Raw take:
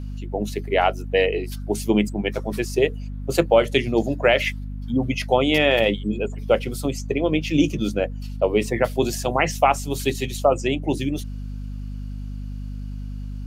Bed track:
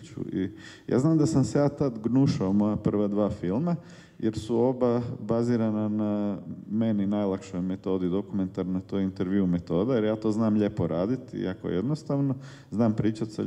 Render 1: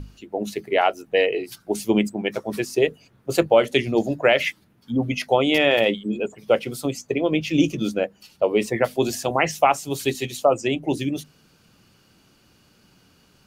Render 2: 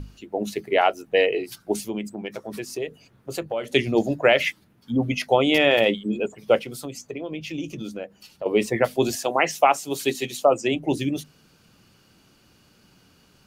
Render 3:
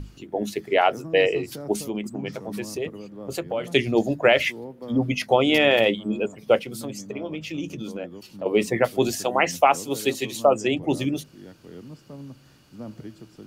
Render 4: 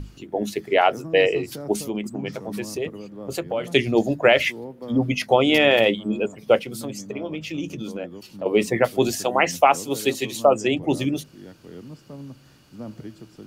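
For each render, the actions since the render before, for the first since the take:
notches 50/100/150/200/250 Hz
1.8–3.74 compressor 2:1, threshold -33 dBFS; 6.6–8.46 compressor 2.5:1, threshold -33 dBFS; 9.15–10.73 HPF 310 Hz -> 130 Hz
add bed track -14 dB
gain +1.5 dB

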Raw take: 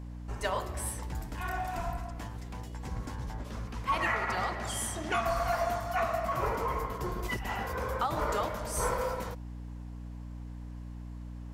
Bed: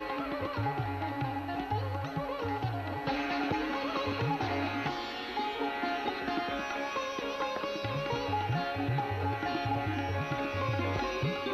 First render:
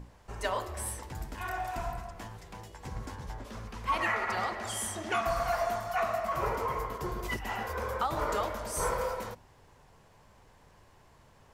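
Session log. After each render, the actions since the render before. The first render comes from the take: notches 60/120/180/240/300 Hz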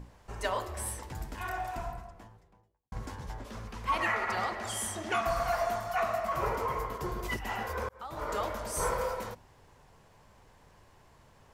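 1.41–2.92 studio fade out; 7.89–8.5 fade in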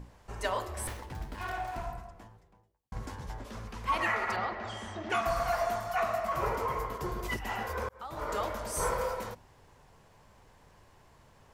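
0.87–1.87 running maximum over 5 samples; 4.36–5.1 air absorption 190 m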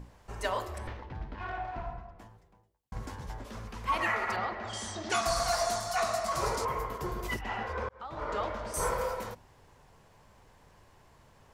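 0.78–2.19 air absorption 240 m; 4.73–6.65 band shelf 6200 Hz +13.5 dB; 7.41–8.74 LPF 4200 Hz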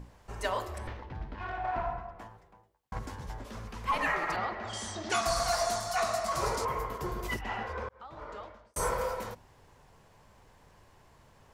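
1.64–2.99 bell 1100 Hz +8 dB 2.9 oct; 3.91–4.35 frequency shift -56 Hz; 7.5–8.76 fade out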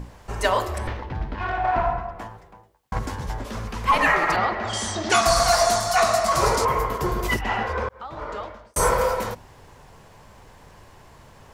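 gain +11 dB

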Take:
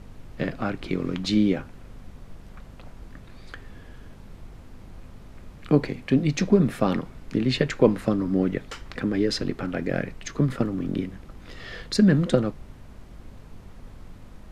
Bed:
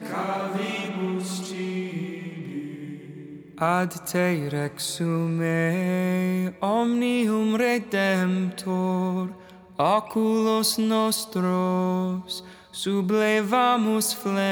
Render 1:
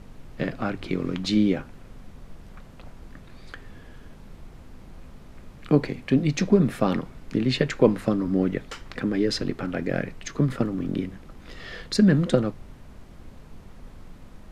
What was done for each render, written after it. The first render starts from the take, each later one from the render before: de-hum 50 Hz, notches 2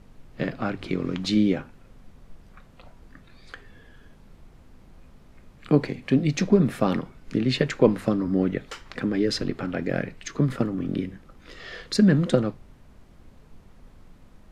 noise print and reduce 6 dB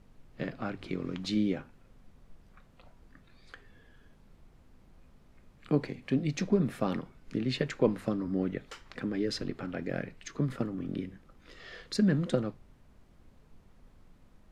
gain -8 dB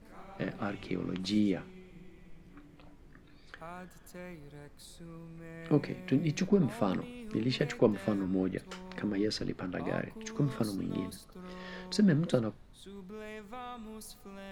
add bed -23.5 dB

